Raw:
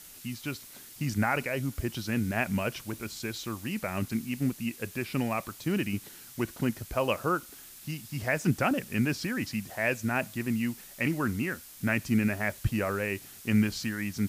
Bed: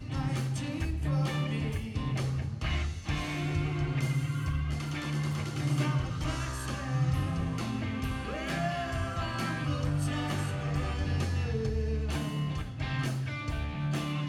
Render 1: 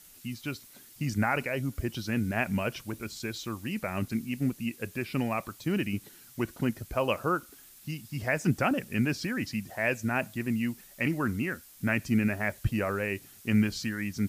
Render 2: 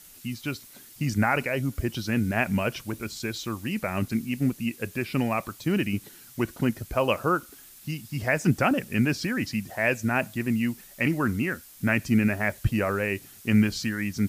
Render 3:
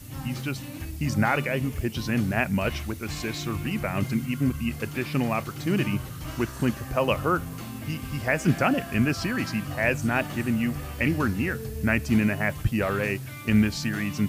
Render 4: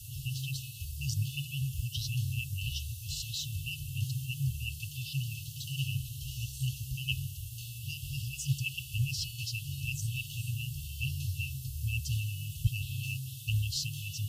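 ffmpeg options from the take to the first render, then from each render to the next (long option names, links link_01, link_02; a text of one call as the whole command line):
ffmpeg -i in.wav -af "afftdn=noise_reduction=6:noise_floor=-49" out.wav
ffmpeg -i in.wav -af "volume=4dB" out.wav
ffmpeg -i in.wav -i bed.wav -filter_complex "[1:a]volume=-3.5dB[link_01];[0:a][link_01]amix=inputs=2:normalize=0" out.wav
ffmpeg -i in.wav -af "afftfilt=real='re*(1-between(b*sr/4096,150,2600))':imag='im*(1-between(b*sr/4096,150,2600))':win_size=4096:overlap=0.75,lowshelf=frequency=73:gain=-8.5" out.wav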